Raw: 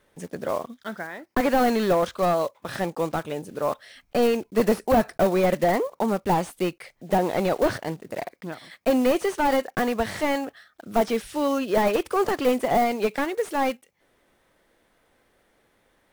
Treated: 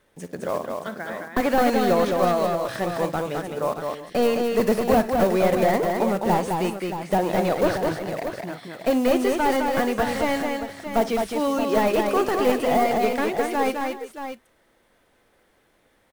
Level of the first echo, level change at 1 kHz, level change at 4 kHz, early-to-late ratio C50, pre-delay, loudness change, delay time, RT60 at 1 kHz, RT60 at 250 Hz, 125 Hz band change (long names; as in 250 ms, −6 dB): −15.5 dB, +2.0 dB, +2.0 dB, no reverb audible, no reverb audible, +1.5 dB, 57 ms, no reverb audible, no reverb audible, +2.0 dB